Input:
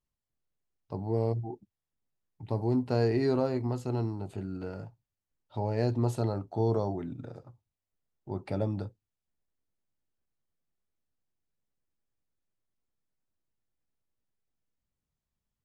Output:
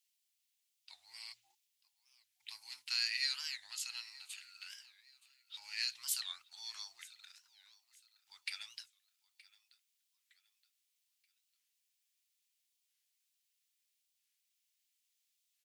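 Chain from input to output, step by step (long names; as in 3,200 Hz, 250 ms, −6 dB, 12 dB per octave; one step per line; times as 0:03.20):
inverse Chebyshev high-pass filter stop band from 550 Hz, stop band 70 dB
repeating echo 921 ms, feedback 36%, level −21 dB
wow of a warped record 45 rpm, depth 250 cents
level +13 dB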